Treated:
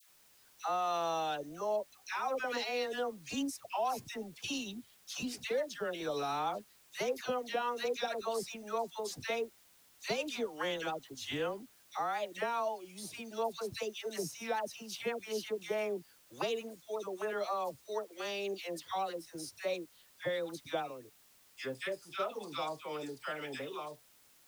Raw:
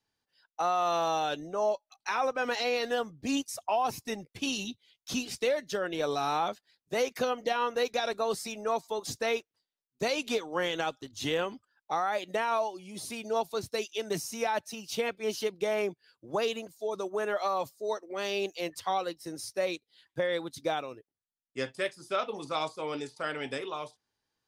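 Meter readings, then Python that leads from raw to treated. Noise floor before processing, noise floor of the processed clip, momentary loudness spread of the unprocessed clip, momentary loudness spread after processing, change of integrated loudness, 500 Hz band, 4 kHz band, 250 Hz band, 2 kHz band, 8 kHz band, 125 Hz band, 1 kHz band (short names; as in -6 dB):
under -85 dBFS, -64 dBFS, 7 LU, 8 LU, -5.5 dB, -5.5 dB, -5.5 dB, -5.5 dB, -5.5 dB, -5.5 dB, -5.5 dB, -5.5 dB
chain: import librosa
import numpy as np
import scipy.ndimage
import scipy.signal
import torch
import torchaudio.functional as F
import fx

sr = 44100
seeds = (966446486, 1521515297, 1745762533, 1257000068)

y = fx.dmg_noise_colour(x, sr, seeds[0], colour='white', level_db=-59.0)
y = fx.dispersion(y, sr, late='lows', ms=90.0, hz=1100.0)
y = y * 10.0 ** (-5.5 / 20.0)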